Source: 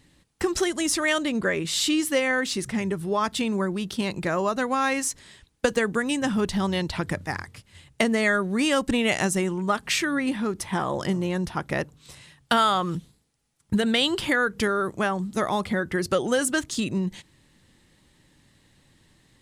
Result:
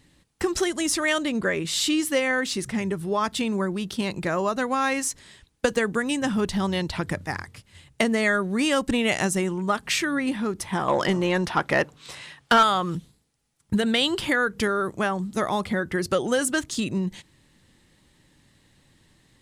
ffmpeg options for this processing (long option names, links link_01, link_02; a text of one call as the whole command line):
ffmpeg -i in.wav -filter_complex "[0:a]asettb=1/sr,asplit=3[link_01][link_02][link_03];[link_01]atrim=end=10.884[link_04];[link_02]atrim=start=10.88:end=12.63,asetpts=PTS-STARTPTS,afade=type=in:duration=0.004:curve=qsin,afade=type=out:start_time=1.746:duration=0.004:curve=qsin,asplit=2[link_05][link_06];[link_06]highpass=frequency=720:poles=1,volume=17dB,asoftclip=type=tanh:threshold=-8dB[link_07];[link_05][link_07]amix=inputs=2:normalize=0,lowpass=frequency=2900:poles=1,volume=-6dB[link_08];[link_03]atrim=start=12.626[link_09];[link_04][link_08]acrossfade=duration=0.004:curve1=hsin:curve2=qsin[link_10];[link_10][link_09]acrossfade=duration=0.004:curve1=qsin:curve2=hsin" out.wav